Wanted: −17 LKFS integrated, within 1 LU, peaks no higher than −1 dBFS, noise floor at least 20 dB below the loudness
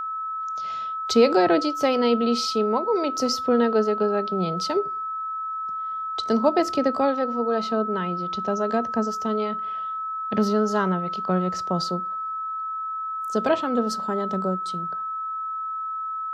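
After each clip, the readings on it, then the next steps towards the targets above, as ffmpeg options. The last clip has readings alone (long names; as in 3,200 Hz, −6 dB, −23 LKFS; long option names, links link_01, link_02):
interfering tone 1,300 Hz; level of the tone −27 dBFS; integrated loudness −24.5 LKFS; sample peak −7.0 dBFS; target loudness −17.0 LKFS
→ -af "bandreject=frequency=1300:width=30"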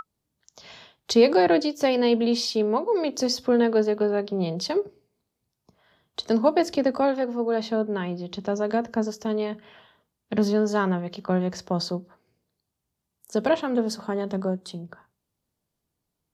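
interfering tone none found; integrated loudness −24.5 LKFS; sample peak −7.5 dBFS; target loudness −17.0 LKFS
→ -af "volume=7.5dB,alimiter=limit=-1dB:level=0:latency=1"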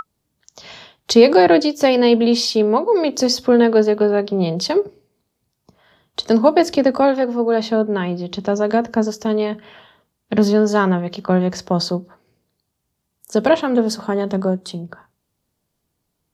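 integrated loudness −17.0 LKFS; sample peak −1.0 dBFS; background noise floor −74 dBFS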